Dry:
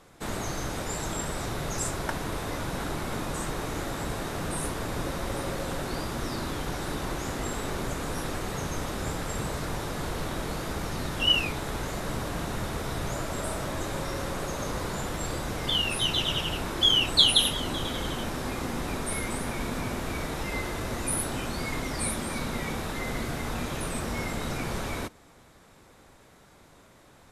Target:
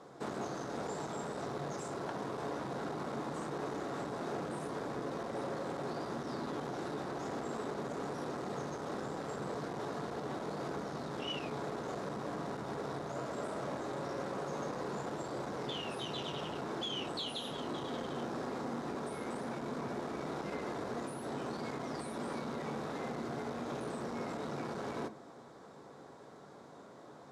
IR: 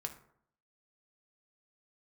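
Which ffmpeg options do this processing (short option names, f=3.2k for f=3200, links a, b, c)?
-filter_complex "[0:a]equalizer=f=2.5k:w=1:g=-15,acompressor=threshold=-34dB:ratio=6,asoftclip=type=tanh:threshold=-38dB,highpass=230,lowpass=4.1k,asplit=2[a][b];[1:a]atrim=start_sample=2205[c];[b][c]afir=irnorm=-1:irlink=0,volume=5dB[d];[a][d]amix=inputs=2:normalize=0,volume=-1.5dB"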